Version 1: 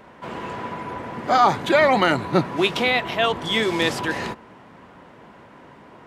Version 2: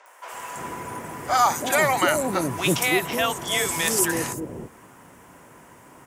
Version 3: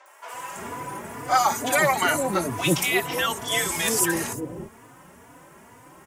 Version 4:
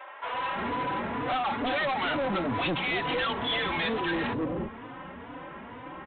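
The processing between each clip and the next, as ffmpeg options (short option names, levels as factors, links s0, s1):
-filter_complex "[0:a]equalizer=f=210:w=6.2:g=-6.5,aexciter=amount=10.3:drive=5.6:freq=5900,acrossover=split=560|5800[s0][s1][s2];[s2]adelay=60[s3];[s0]adelay=330[s4];[s4][s1][s3]amix=inputs=3:normalize=0,volume=0.841"
-filter_complex "[0:a]asplit=2[s0][s1];[s1]adelay=3.4,afreqshift=2.2[s2];[s0][s2]amix=inputs=2:normalize=1,volume=1.33"
-af "aecho=1:1:3.8:0.36,acompressor=threshold=0.0708:ratio=6,aresample=8000,asoftclip=type=tanh:threshold=0.0224,aresample=44100,volume=2.24"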